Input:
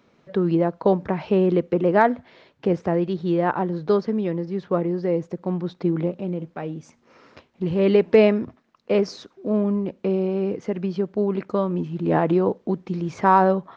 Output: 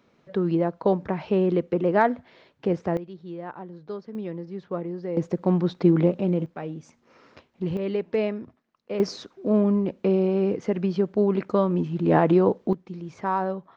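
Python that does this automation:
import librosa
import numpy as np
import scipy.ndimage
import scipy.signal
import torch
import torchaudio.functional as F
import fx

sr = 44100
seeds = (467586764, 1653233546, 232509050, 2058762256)

y = fx.gain(x, sr, db=fx.steps((0.0, -3.0), (2.97, -15.0), (4.15, -8.0), (5.17, 4.0), (6.46, -3.0), (7.77, -10.0), (9.0, 1.0), (12.73, -9.5)))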